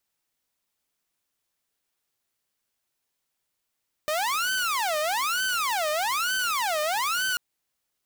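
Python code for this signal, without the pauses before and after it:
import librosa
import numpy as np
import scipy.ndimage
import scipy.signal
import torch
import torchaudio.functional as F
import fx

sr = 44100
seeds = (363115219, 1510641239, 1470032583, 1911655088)

y = fx.siren(sr, length_s=3.29, kind='wail', low_hz=604.0, high_hz=1530.0, per_s=1.1, wave='saw', level_db=-21.5)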